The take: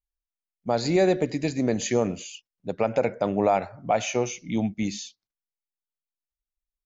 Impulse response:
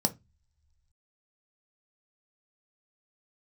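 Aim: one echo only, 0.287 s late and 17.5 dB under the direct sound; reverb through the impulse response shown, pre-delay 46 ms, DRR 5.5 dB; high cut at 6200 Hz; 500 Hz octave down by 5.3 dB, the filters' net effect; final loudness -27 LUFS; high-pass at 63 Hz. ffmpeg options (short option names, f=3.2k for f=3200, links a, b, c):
-filter_complex "[0:a]highpass=63,lowpass=6.2k,equalizer=f=500:t=o:g=-7,aecho=1:1:287:0.133,asplit=2[a][b];[1:a]atrim=start_sample=2205,adelay=46[c];[b][c]afir=irnorm=-1:irlink=0,volume=-12.5dB[d];[a][d]amix=inputs=2:normalize=0,volume=-2.5dB"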